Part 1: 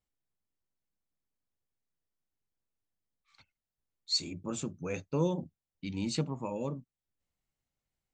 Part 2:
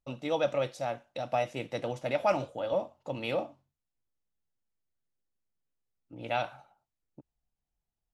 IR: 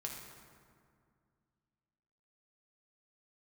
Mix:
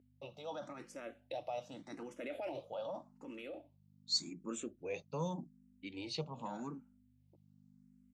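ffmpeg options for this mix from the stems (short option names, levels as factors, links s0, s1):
-filter_complex "[0:a]aeval=exprs='val(0)+0.00398*(sin(2*PI*50*n/s)+sin(2*PI*2*50*n/s)/2+sin(2*PI*3*50*n/s)/3+sin(2*PI*4*50*n/s)/4+sin(2*PI*5*50*n/s)/5)':c=same,volume=0.75[s0];[1:a]equalizer=f=310:w=2.1:g=6,alimiter=level_in=1.19:limit=0.0631:level=0:latency=1:release=20,volume=0.841,adelay=150,volume=0.531,afade=t=out:st=3:d=0.56:silence=0.446684[s1];[s0][s1]amix=inputs=2:normalize=0,highpass=210,asplit=2[s2][s3];[s3]afreqshift=0.85[s4];[s2][s4]amix=inputs=2:normalize=1"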